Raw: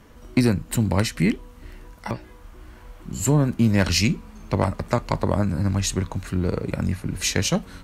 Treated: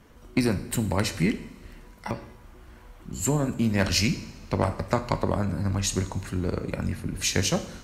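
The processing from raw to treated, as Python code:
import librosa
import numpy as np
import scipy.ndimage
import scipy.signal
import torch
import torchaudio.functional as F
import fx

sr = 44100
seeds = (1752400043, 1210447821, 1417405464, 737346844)

y = fx.hpss(x, sr, part='harmonic', gain_db=-5)
y = fx.rev_double_slope(y, sr, seeds[0], early_s=0.78, late_s=3.0, knee_db=-18, drr_db=9.0)
y = y * 10.0 ** (-2.0 / 20.0)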